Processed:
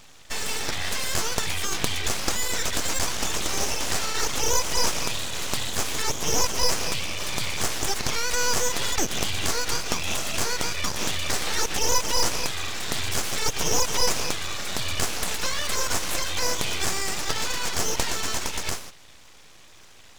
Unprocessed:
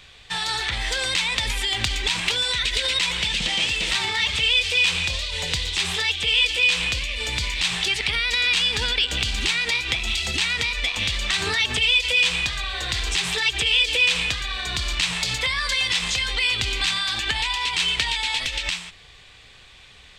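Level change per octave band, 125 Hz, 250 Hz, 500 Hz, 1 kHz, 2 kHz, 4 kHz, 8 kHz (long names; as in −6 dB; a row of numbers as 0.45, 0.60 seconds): −2.0, +3.5, +4.5, +2.5, −8.5, −8.0, +6.0 decibels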